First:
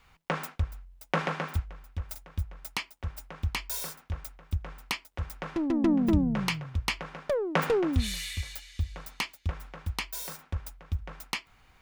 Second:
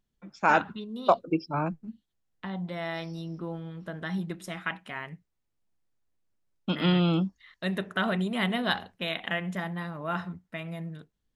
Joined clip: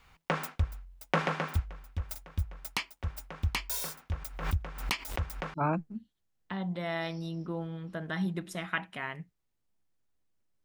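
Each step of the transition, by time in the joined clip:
first
4.17–5.54 backwards sustainer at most 88 dB/s
5.54 switch to second from 1.47 s

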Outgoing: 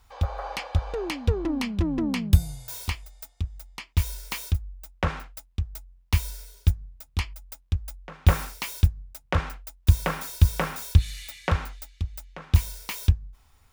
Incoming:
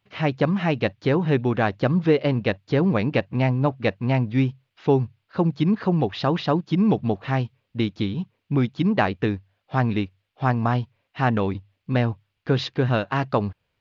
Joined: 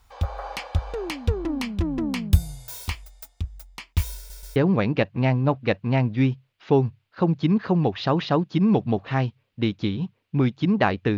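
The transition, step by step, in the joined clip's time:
outgoing
4.17 stutter in place 0.13 s, 3 plays
4.56 switch to incoming from 2.73 s

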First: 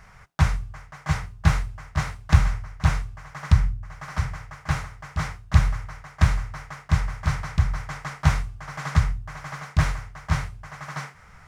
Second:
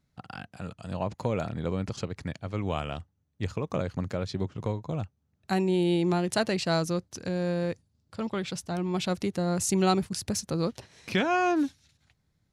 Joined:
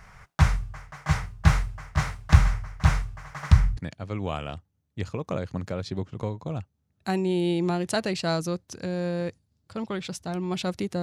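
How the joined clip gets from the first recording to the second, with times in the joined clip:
first
3.77 switch to second from 2.2 s

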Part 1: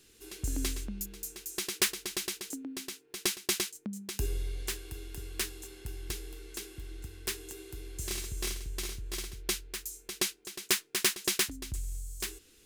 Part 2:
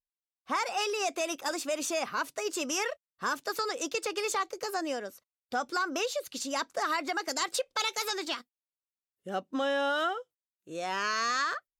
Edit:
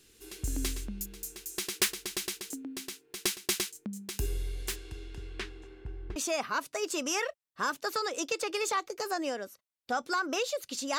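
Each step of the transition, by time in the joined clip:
part 1
4.75–6.16 LPF 7300 Hz -> 1100 Hz
6.16 switch to part 2 from 1.79 s

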